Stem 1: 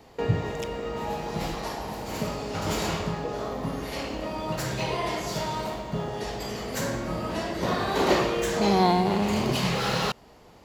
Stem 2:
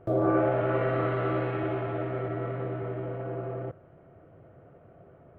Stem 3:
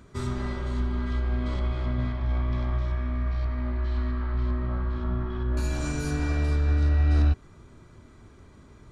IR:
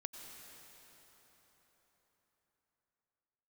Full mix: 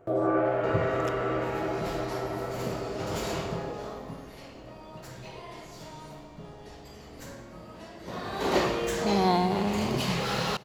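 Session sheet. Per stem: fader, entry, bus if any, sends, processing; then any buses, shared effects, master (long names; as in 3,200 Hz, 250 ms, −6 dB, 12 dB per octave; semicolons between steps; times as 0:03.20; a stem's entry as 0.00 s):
0:03.82 −6.5 dB → 0:04.44 −16 dB → 0:07.94 −16 dB → 0:08.54 −4 dB, 0.45 s, send −13 dB, no processing
+0.5 dB, 0.00 s, no send, low-shelf EQ 160 Hz −12 dB
−18.5 dB, 0.00 s, no send, phaser with its sweep stopped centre 340 Hz, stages 8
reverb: on, RT60 4.5 s, pre-delay 83 ms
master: no processing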